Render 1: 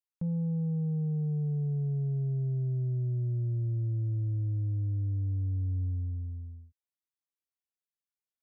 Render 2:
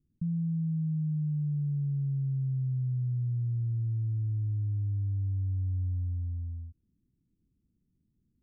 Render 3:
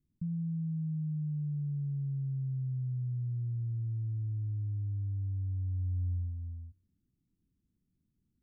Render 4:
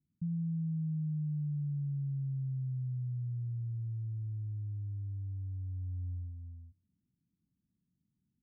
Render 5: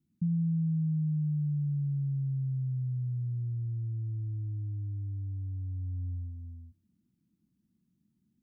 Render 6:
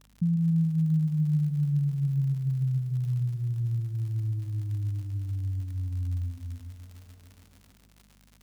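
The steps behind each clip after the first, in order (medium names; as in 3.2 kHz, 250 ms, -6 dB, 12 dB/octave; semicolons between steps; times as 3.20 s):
inverse Chebyshev low-pass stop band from 640 Hz, stop band 50 dB; level flattener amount 50%
feedback comb 90 Hz, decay 0.86 s, mix 40%
band-pass filter 170 Hz, Q 1.2
small resonant body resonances 220/320 Hz, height 9 dB; trim +2.5 dB
hum 50 Hz, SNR 32 dB; crackle 110 per s -45 dBFS; bit-crushed delay 145 ms, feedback 80%, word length 10-bit, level -13.5 dB; trim +4 dB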